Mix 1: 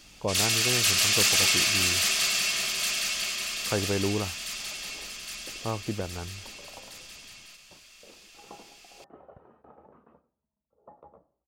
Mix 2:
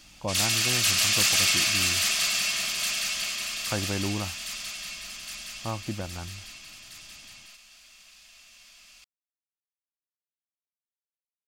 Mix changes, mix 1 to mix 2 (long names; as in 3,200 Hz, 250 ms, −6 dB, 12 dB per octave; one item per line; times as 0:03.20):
second sound: muted
master: add parametric band 430 Hz −13.5 dB 0.31 octaves